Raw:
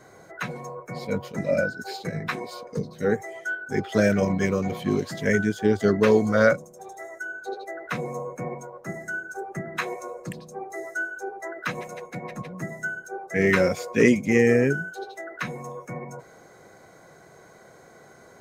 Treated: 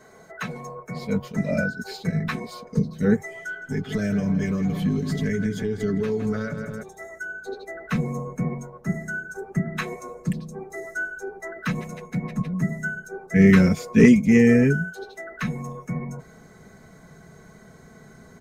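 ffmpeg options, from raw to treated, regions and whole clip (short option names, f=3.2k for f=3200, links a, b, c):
-filter_complex "[0:a]asettb=1/sr,asplit=3[a][b][c];[a]atrim=end=3.234[d];[b]atrim=start=3.23:end=6.83,asetpts=PTS-STARTPTS,afade=t=in:d=0.004:c=qsin,afade=t=out:st=3.596:d=0.004:c=qsin,aecho=1:1:7:0.49,atrim=end_sample=158760,asplit=2[e][f];[f]adelay=163,lowpass=f=4.1k:p=1,volume=-12dB,asplit=2[g][h];[h]adelay=163,lowpass=f=4.1k:p=1,volume=0.53,asplit=2[i][j];[j]adelay=163,lowpass=f=4.1k:p=1,volume=0.53,asplit=2[k][l];[l]adelay=163,lowpass=f=4.1k:p=1,volume=0.53,asplit=2[m][n];[n]adelay=163,lowpass=f=4.1k:p=1,volume=0.53,asplit=2[o][p];[p]adelay=163,lowpass=f=4.1k:p=1,volume=0.53[q];[e][g][i][k][m][o][q]amix=inputs=7:normalize=0,atrim=end_sample=158760,acompressor=threshold=-28dB:ratio=3:attack=3.2:release=140:knee=1:detection=peak[r];[c]atrim=start=6.826[s];[d][r]acrossfade=d=0.004:c1=hsin:c2=qsin[t];[t][s]acrossfade=d=0.004:c1=qsin:c2=hsin,aecho=1:1:4.6:0.52,asubboost=boost=6:cutoff=210,volume=-1dB"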